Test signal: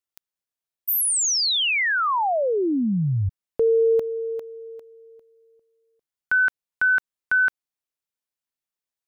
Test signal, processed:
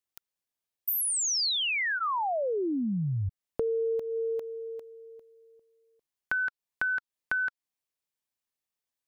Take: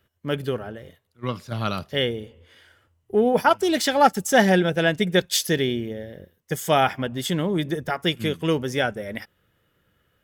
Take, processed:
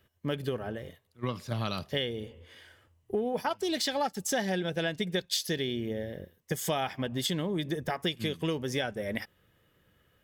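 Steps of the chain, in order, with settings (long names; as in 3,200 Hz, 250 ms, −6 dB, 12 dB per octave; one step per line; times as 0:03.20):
notch filter 1,400 Hz, Q 11
dynamic equaliser 4,300 Hz, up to +7 dB, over −42 dBFS, Q 1.7
downward compressor 6 to 1, threshold −28 dBFS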